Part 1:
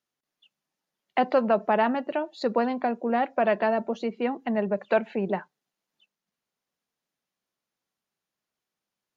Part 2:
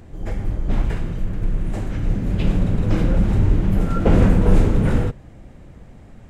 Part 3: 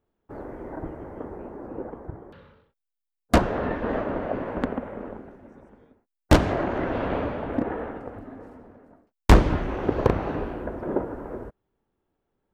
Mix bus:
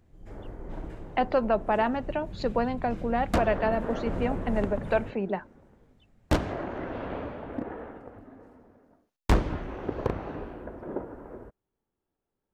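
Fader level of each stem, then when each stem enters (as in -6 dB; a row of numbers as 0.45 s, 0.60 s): -2.5 dB, -19.5 dB, -8.0 dB; 0.00 s, 0.00 s, 0.00 s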